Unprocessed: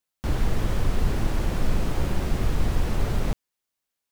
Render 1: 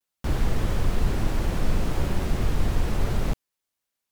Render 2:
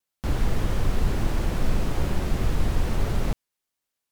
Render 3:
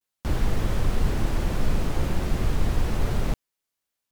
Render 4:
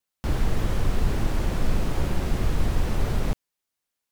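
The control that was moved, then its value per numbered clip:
vibrato, rate: 0.64 Hz, 2.5 Hz, 0.33 Hz, 3.6 Hz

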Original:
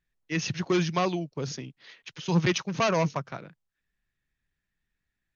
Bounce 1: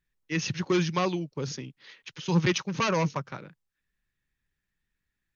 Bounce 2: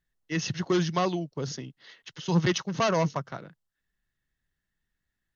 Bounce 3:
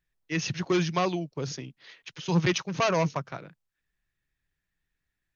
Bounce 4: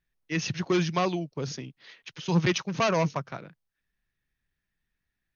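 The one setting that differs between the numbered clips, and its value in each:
band-stop, frequency: 680 Hz, 2.4 kHz, 220 Hz, 7.3 kHz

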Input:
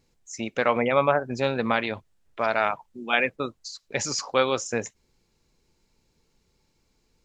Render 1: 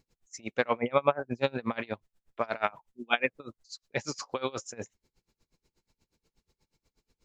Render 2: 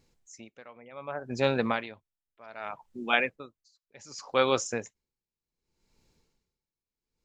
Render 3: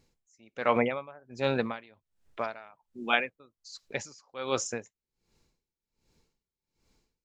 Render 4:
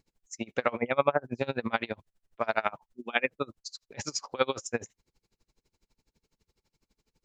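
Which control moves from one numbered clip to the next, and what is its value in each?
logarithmic tremolo, rate: 8.3 Hz, 0.66 Hz, 1.3 Hz, 12 Hz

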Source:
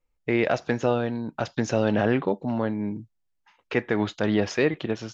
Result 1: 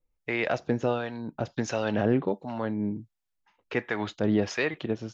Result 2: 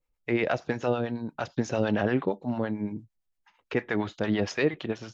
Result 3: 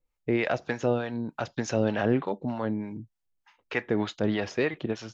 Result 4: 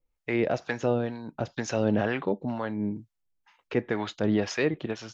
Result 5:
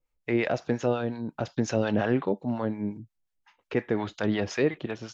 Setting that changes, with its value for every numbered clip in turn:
harmonic tremolo, rate: 1.4 Hz, 8.8 Hz, 3.3 Hz, 2.1 Hz, 5.6 Hz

